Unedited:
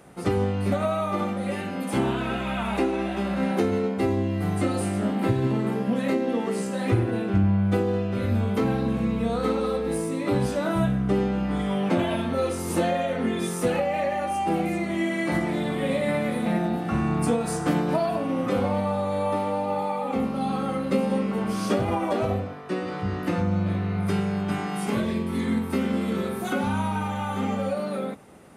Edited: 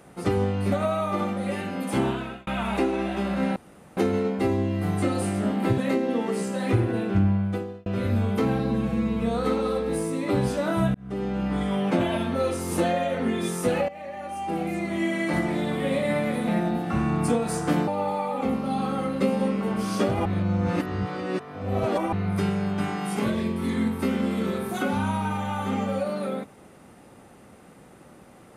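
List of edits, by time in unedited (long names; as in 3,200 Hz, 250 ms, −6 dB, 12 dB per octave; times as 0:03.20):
0:02.06–0:02.47: fade out
0:03.56: splice in room tone 0.41 s
0:05.37–0:05.97: remove
0:07.44–0:08.05: fade out
0:08.78–0:09.19: time-stretch 1.5×
0:10.93–0:11.45: fade in
0:13.87–0:15.02: fade in linear, from −17 dB
0:17.86–0:19.58: remove
0:21.96–0:23.83: reverse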